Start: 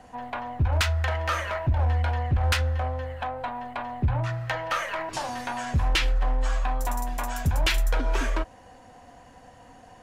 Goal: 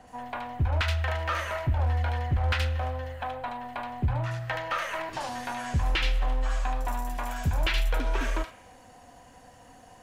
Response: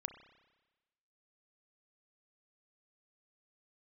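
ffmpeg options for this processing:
-filter_complex "[0:a]acrossover=split=4000[link_01][link_02];[link_02]acompressor=threshold=-50dB:ratio=4:attack=1:release=60[link_03];[link_01][link_03]amix=inputs=2:normalize=0,asplit=2[link_04][link_05];[link_05]aderivative[link_06];[1:a]atrim=start_sample=2205,adelay=75[link_07];[link_06][link_07]afir=irnorm=-1:irlink=0,volume=7dB[link_08];[link_04][link_08]amix=inputs=2:normalize=0,volume=-2.5dB"

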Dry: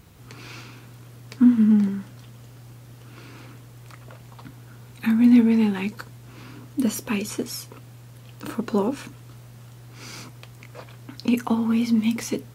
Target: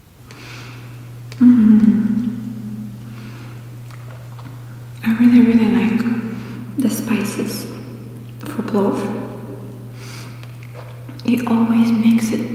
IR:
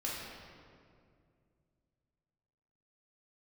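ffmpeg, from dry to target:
-filter_complex "[0:a]asplit=2[link_01][link_02];[link_02]adynamicequalizer=threshold=0.00891:dfrequency=1500:dqfactor=0.92:tfrequency=1500:tqfactor=0.92:attack=5:release=100:ratio=0.375:range=2.5:mode=boostabove:tftype=bell[link_03];[1:a]atrim=start_sample=2205,highshelf=frequency=6300:gain=-12,adelay=61[link_04];[link_03][link_04]afir=irnorm=-1:irlink=0,volume=-6dB[link_05];[link_01][link_05]amix=inputs=2:normalize=0,volume=4.5dB" -ar 48000 -c:a libopus -b:a 48k

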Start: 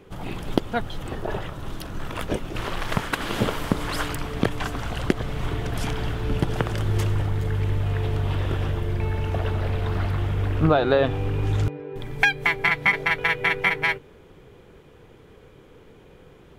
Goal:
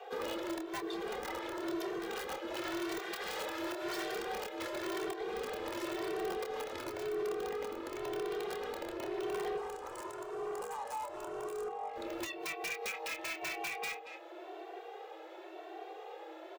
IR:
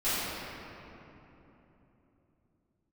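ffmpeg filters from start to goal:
-filter_complex "[0:a]acompressor=threshold=-28dB:ratio=20,equalizer=frequency=9400:width=1.7:gain=-12,aeval=exprs='(mod(15.8*val(0)+1,2)-1)/15.8':channel_layout=same,asplit=2[link_01][link_02];[link_02]adelay=27,volume=-10.5dB[link_03];[link_01][link_03]amix=inputs=2:normalize=0,afreqshift=320,asoftclip=type=hard:threshold=-32.5dB,asettb=1/sr,asplit=3[link_04][link_05][link_06];[link_04]atrim=end=9.574[link_07];[link_05]atrim=start=9.57:end=11.89,asetpts=PTS-STARTPTS,afade=type=in:duration=0.004:curve=qsin,afade=type=out:start_time=2.316:duration=0.004:curve=qsin,equalizer=frequency=250:width_type=o:width=1:gain=-5,equalizer=frequency=1000:width_type=o:width=1:gain=8,equalizer=frequency=2000:width_type=o:width=1:gain=-4,equalizer=frequency=4000:width_type=o:width=1:gain=-6,equalizer=frequency=8000:width_type=o:width=1:gain=11[link_08];[link_06]atrim=start=11.886[link_09];[link_07][link_08]acrossfade=duration=0.004:curve1=hsin:curve2=qsin[link_10];[link_10][link_09]acrossfade=duration=0.004:curve1=qsin:curve2=hsin,asplit=2[link_11][link_12];[link_12]adelay=230,highpass=300,lowpass=3400,asoftclip=type=hard:threshold=-33dB,volume=-10dB[link_13];[link_11][link_13]amix=inputs=2:normalize=0,alimiter=level_in=10dB:limit=-24dB:level=0:latency=1:release=495,volume=-10dB,asplit=2[link_14][link_15];[link_15]adelay=2.1,afreqshift=0.94[link_16];[link_14][link_16]amix=inputs=2:normalize=1,volume=3.5dB"

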